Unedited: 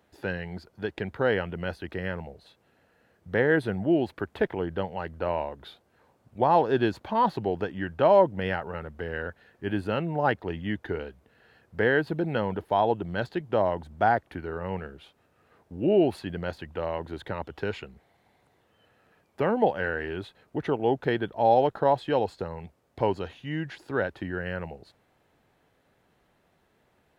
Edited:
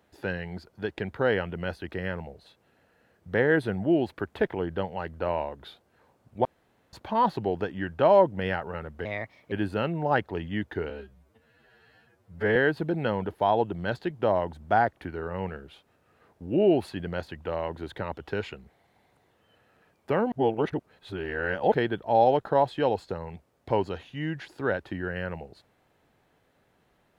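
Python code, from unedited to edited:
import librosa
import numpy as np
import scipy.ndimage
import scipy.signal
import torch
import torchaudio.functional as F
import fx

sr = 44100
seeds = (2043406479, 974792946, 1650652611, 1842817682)

y = fx.edit(x, sr, fx.room_tone_fill(start_s=6.45, length_s=0.48),
    fx.speed_span(start_s=9.05, length_s=0.6, speed=1.28),
    fx.stretch_span(start_s=11.03, length_s=0.83, factor=2.0),
    fx.reverse_span(start_s=19.62, length_s=1.4), tone=tone)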